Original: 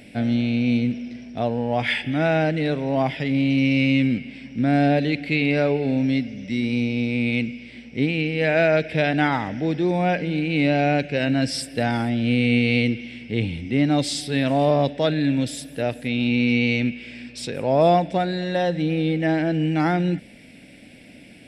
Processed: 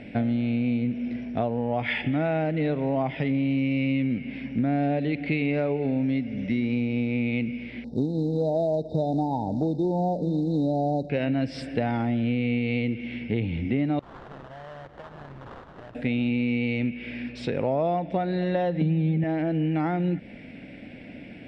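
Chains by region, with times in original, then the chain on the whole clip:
0:07.84–0:11.10: floating-point word with a short mantissa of 2 bits + linear-phase brick-wall band-stop 960–3,600 Hz + upward compression, threshold −41 dBFS
0:13.99–0:15.95: guitar amp tone stack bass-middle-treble 10-0-10 + downward compressor 12 to 1, threshold −42 dBFS + sample-rate reduction 2,400 Hz, jitter 20%
0:18.81–0:19.24: parametric band 200 Hz +11.5 dB 1.3 octaves + comb filter 5.1 ms, depth 64%
whole clip: low-pass filter 2,200 Hz 12 dB per octave; dynamic equaliser 1,600 Hz, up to −6 dB, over −47 dBFS, Q 5.1; downward compressor 6 to 1, threshold −27 dBFS; level +4.5 dB

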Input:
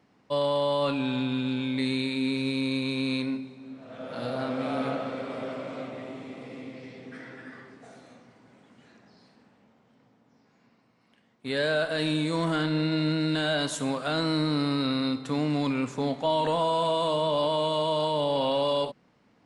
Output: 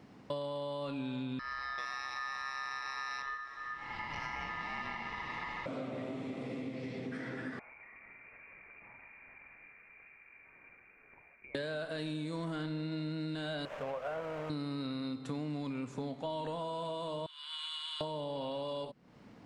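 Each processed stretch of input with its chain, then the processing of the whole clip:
0:01.39–0:05.66: low-pass filter 6,200 Hz + ring modulation 1,500 Hz
0:07.59–0:11.55: downward compressor 16 to 1, threshold −55 dBFS + voice inversion scrambler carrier 2,600 Hz
0:13.65–0:14.50: linear delta modulator 16 kbit/s, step −32.5 dBFS + low shelf with overshoot 400 Hz −9.5 dB, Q 3 + slack as between gear wheels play −38 dBFS
0:17.26–0:18.01: Butterworth high-pass 1,400 Hz 48 dB per octave + high-shelf EQ 2,600 Hz −8.5 dB
whole clip: low-shelf EQ 380 Hz +5.5 dB; downward compressor, threshold −42 dBFS; level +4.5 dB

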